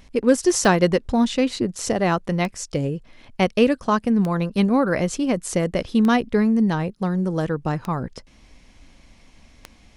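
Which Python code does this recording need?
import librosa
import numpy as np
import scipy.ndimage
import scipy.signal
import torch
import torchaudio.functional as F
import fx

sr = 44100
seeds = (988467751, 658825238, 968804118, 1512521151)

y = fx.fix_declip(x, sr, threshold_db=-5.5)
y = fx.fix_declick_ar(y, sr, threshold=10.0)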